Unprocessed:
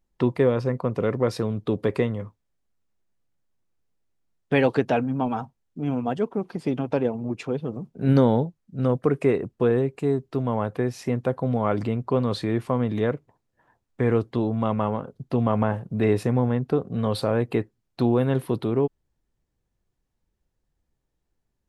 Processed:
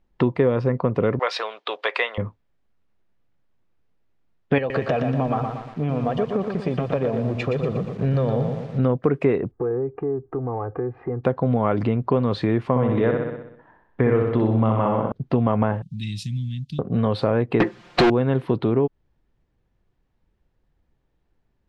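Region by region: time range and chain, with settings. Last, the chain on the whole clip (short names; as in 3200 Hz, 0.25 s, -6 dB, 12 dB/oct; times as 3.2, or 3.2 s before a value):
1.19–2.18 HPF 640 Hz 24 dB/oct + bell 3300 Hz +10.5 dB 2 oct
4.58–8.79 comb 1.7 ms, depth 52% + compressor 4:1, threshold -26 dBFS + lo-fi delay 0.119 s, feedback 55%, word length 8-bit, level -6 dB
9.51–11.24 LPF 1400 Hz 24 dB/oct + comb 2.5 ms, depth 82% + compressor 2.5:1, threshold -36 dBFS
12.69–15.12 LPF 3500 Hz + feedback echo 63 ms, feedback 56%, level -4 dB
15.82–16.79 elliptic band-stop 170–3300 Hz, stop band 50 dB + tone controls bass -10 dB, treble +13 dB
17.6–18.1 comb 5.7 ms, depth 75% + overdrive pedal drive 40 dB, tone 6600 Hz, clips at -9 dBFS
whole clip: LPF 3200 Hz 12 dB/oct; compressor 2.5:1, threshold -26 dBFS; gain +8 dB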